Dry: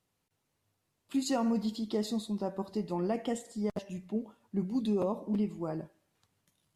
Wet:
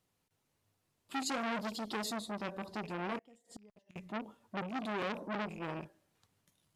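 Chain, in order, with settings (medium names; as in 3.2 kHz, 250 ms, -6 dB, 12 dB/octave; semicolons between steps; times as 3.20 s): rattle on loud lows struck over -44 dBFS, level -33 dBFS; 1.40–2.13 s: treble shelf 6.6 kHz +8 dB; 3.18–3.96 s: inverted gate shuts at -34 dBFS, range -28 dB; 4.69–5.09 s: bass shelf 150 Hz -7 dB; transformer saturation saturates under 1.9 kHz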